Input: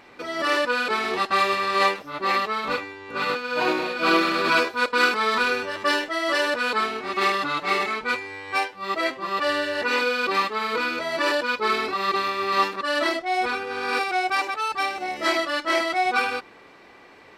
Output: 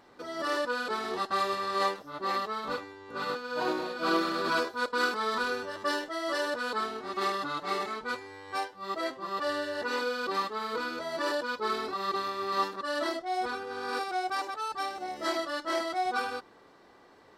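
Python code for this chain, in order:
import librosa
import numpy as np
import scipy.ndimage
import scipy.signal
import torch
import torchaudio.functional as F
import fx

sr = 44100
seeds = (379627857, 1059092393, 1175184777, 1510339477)

y = fx.peak_eq(x, sr, hz=2400.0, db=-12.5, octaves=0.57)
y = F.gain(torch.from_numpy(y), -6.5).numpy()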